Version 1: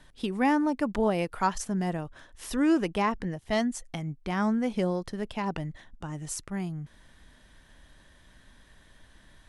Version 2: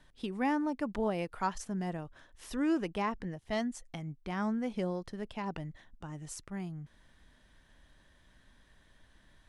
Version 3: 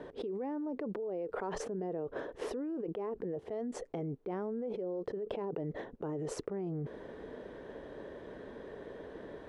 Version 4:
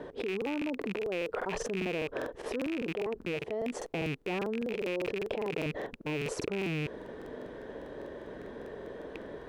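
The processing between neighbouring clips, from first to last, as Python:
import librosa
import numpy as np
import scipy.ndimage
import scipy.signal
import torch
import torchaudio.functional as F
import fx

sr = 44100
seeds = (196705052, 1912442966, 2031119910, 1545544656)

y1 = fx.high_shelf(x, sr, hz=10000.0, db=-7.0)
y1 = y1 * librosa.db_to_amplitude(-6.5)
y2 = fx.bandpass_q(y1, sr, hz=440.0, q=5.5)
y2 = fx.env_flatten(y2, sr, amount_pct=100)
y2 = y2 * librosa.db_to_amplitude(-4.0)
y3 = fx.rattle_buzz(y2, sr, strikes_db=-46.0, level_db=-31.0)
y3 = fx.buffer_crackle(y3, sr, first_s=0.37, period_s=0.2, block=2048, kind='repeat')
y3 = y3 * librosa.db_to_amplitude(3.5)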